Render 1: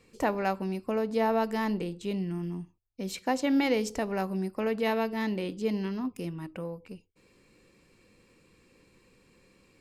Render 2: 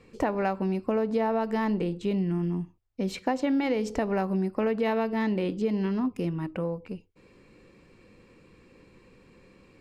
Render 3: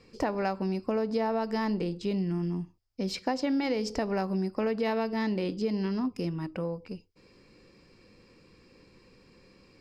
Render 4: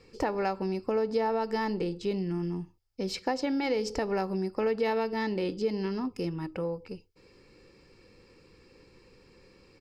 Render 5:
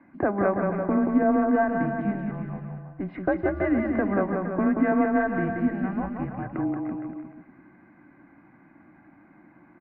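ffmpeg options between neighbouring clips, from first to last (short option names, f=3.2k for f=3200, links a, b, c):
-af "lowpass=f=2.1k:p=1,acompressor=threshold=-30dB:ratio=6,volume=7dB"
-af "equalizer=f=5k:w=3.4:g=14.5,volume=-2.5dB"
-af "aecho=1:1:2.3:0.34"
-af "aecho=1:1:180|333|463|573.6|667.6:0.631|0.398|0.251|0.158|0.1,highpass=f=420:t=q:w=0.5412,highpass=f=420:t=q:w=1.307,lowpass=f=2k:t=q:w=0.5176,lowpass=f=2k:t=q:w=0.7071,lowpass=f=2k:t=q:w=1.932,afreqshift=-200,volume=7dB"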